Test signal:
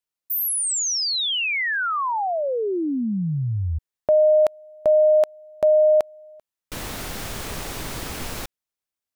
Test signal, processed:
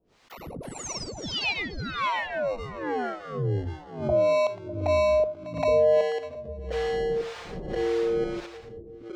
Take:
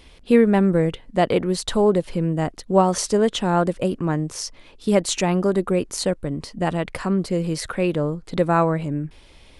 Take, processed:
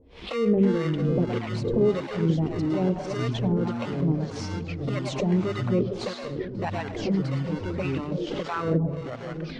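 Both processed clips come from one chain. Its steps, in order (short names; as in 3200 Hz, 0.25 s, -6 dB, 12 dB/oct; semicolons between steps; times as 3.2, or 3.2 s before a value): HPF 49 Hz 6 dB/oct; bell 460 Hz +5.5 dB 0.32 oct; notches 50/100/150/200 Hz; on a send: split-band echo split 510 Hz, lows 0.34 s, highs 0.111 s, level -8.5 dB; on the sum: limiter -11 dBFS; envelope flanger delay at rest 11.5 ms, full sweep at -13.5 dBFS; in parallel at -8 dB: sample-and-hold 27×; on the sum: harmonic tremolo 1.7 Hz, depth 100%, crossover 660 Hz; echoes that change speed 0.22 s, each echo -5 st, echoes 2, each echo -6 dB; air absorption 150 m; backwards sustainer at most 99 dB/s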